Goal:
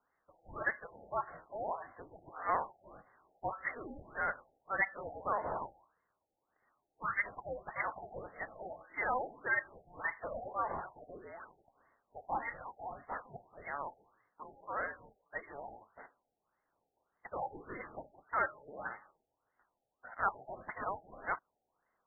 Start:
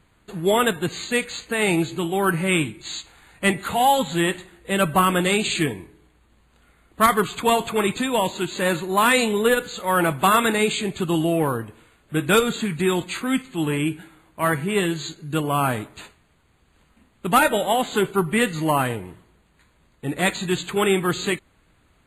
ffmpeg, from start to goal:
-af "lowshelf=f=100:g=-11.5,lowpass=f=2800:t=q:w=0.5098,lowpass=f=2800:t=q:w=0.6013,lowpass=f=2800:t=q:w=0.9,lowpass=f=2800:t=q:w=2.563,afreqshift=-3300,adynamicsmooth=sensitivity=5:basefreq=1300,afftfilt=real='re*lt(b*sr/1024,840*pow(2200/840,0.5+0.5*sin(2*PI*1.7*pts/sr)))':imag='im*lt(b*sr/1024,840*pow(2200/840,0.5+0.5*sin(2*PI*1.7*pts/sr)))':win_size=1024:overlap=0.75,volume=0.473"

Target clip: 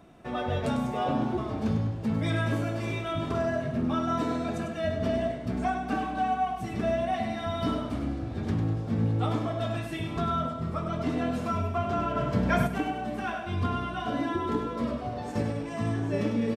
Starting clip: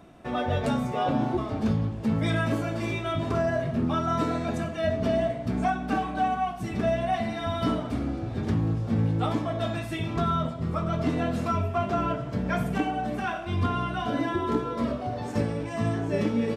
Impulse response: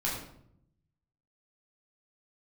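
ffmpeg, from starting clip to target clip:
-filter_complex "[0:a]aecho=1:1:100|200|300|400|500:0.398|0.171|0.0736|0.0317|0.0136,asplit=3[s0][s1][s2];[s0]afade=t=out:st=12.15:d=0.02[s3];[s1]acontrast=51,afade=t=in:st=12.15:d=0.02,afade=t=out:st=12.66:d=0.02[s4];[s2]afade=t=in:st=12.66:d=0.02[s5];[s3][s4][s5]amix=inputs=3:normalize=0,volume=0.708"

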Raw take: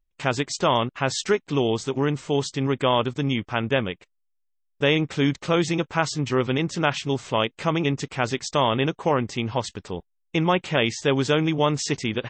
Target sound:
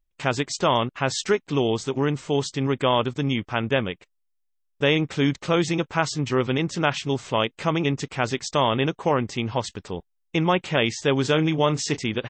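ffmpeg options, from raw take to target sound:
-filter_complex "[0:a]asplit=3[s0][s1][s2];[s0]afade=t=out:st=11.23:d=0.02[s3];[s1]asplit=2[s4][s5];[s5]adelay=32,volume=0.211[s6];[s4][s6]amix=inputs=2:normalize=0,afade=t=in:st=11.23:d=0.02,afade=t=out:st=11.96:d=0.02[s7];[s2]afade=t=in:st=11.96:d=0.02[s8];[s3][s7][s8]amix=inputs=3:normalize=0"

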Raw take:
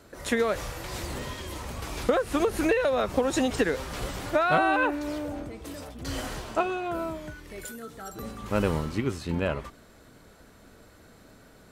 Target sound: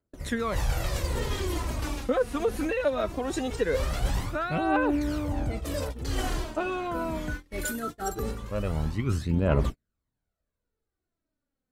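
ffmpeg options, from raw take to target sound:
-af "agate=range=0.00631:threshold=0.00891:ratio=16:detection=peak,lowshelf=f=290:g=7.5,areverse,acompressor=threshold=0.0224:ratio=6,areverse,aphaser=in_gain=1:out_gain=1:delay=4.3:decay=0.56:speed=0.21:type=triangular,volume=2"

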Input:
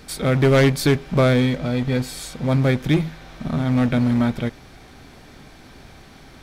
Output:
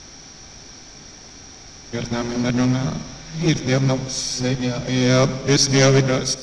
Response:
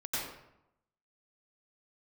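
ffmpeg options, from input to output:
-filter_complex "[0:a]areverse,asplit=2[s0][s1];[s1]asetrate=66075,aresample=44100,atempo=0.66742,volume=0.158[s2];[s0][s2]amix=inputs=2:normalize=0,lowpass=f=5700:t=q:w=14,bandreject=f=60:t=h:w=6,bandreject=f=120:t=h:w=6,bandreject=f=180:t=h:w=6,bandreject=f=240:t=h:w=6,asplit=2[s3][s4];[1:a]atrim=start_sample=2205[s5];[s4][s5]afir=irnorm=-1:irlink=0,volume=0.133[s6];[s3][s6]amix=inputs=2:normalize=0,volume=0.891"

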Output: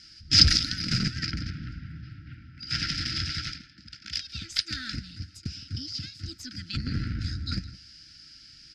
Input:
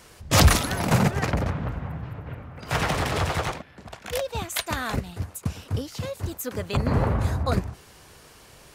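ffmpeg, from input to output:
-filter_complex "[0:a]afftfilt=real='re*(1-between(b*sr/4096,340,1300))':imag='im*(1-between(b*sr/4096,340,1300))':win_size=4096:overlap=0.75,aeval=exprs='0.531*(cos(1*acos(clip(val(0)/0.531,-1,1)))-cos(1*PI/2))+0.0299*(cos(6*acos(clip(val(0)/0.531,-1,1)))-cos(6*PI/2))':c=same,lowpass=f=5000:t=q:w=14,asplit=2[s0][s1];[s1]aecho=0:1:165:0.112[s2];[s0][s2]amix=inputs=2:normalize=0,volume=0.422"

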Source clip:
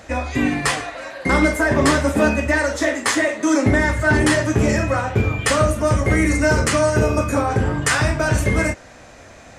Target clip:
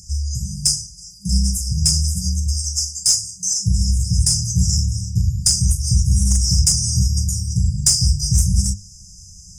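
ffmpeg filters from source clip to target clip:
-filter_complex "[0:a]equalizer=f=125:t=o:w=1:g=-6,equalizer=f=4000:t=o:w=1:g=10,equalizer=f=8000:t=o:w=1:g=3,afftfilt=real='re*(1-between(b*sr/4096,200,4800))':imag='im*(1-between(b*sr/4096,200,4800))':win_size=4096:overlap=0.75,lowshelf=f=130:g=4,bandreject=f=50:t=h:w=6,bandreject=f=100:t=h:w=6,bandreject=f=150:t=h:w=6,bandreject=f=200:t=h:w=6,bandreject=f=250:t=h:w=6,aeval=exprs='1.19*(cos(1*acos(clip(val(0)/1.19,-1,1)))-cos(1*PI/2))+0.266*(cos(2*acos(clip(val(0)/1.19,-1,1)))-cos(2*PI/2))+0.376*(cos(5*acos(clip(val(0)/1.19,-1,1)))-cos(5*PI/2))+0.00944*(cos(7*acos(clip(val(0)/1.19,-1,1)))-cos(7*PI/2))+0.0473*(cos(8*acos(clip(val(0)/1.19,-1,1)))-cos(8*PI/2))':c=same,acrossover=split=300|3000[s0][s1][s2];[s1]acompressor=threshold=0.2:ratio=4[s3];[s0][s3][s2]amix=inputs=3:normalize=0,volume=0.75"

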